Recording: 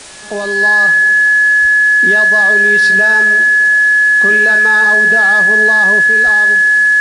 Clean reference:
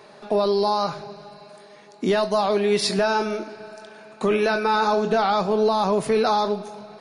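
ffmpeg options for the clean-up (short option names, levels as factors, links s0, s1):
-filter_complex "[0:a]bandreject=f=1700:w=30,asplit=3[s0][s1][s2];[s0]afade=t=out:st=1.61:d=0.02[s3];[s1]highpass=f=140:w=0.5412,highpass=f=140:w=1.3066,afade=t=in:st=1.61:d=0.02,afade=t=out:st=1.73:d=0.02[s4];[s2]afade=t=in:st=1.73:d=0.02[s5];[s3][s4][s5]amix=inputs=3:normalize=0,asplit=3[s6][s7][s8];[s6]afade=t=out:st=6.24:d=0.02[s9];[s7]highpass=f=140:w=0.5412,highpass=f=140:w=1.3066,afade=t=in:st=6.24:d=0.02,afade=t=out:st=6.36:d=0.02[s10];[s8]afade=t=in:st=6.36:d=0.02[s11];[s9][s10][s11]amix=inputs=3:normalize=0,afwtdn=0.028,asetnsamples=n=441:p=0,asendcmd='6.02 volume volume 4.5dB',volume=1"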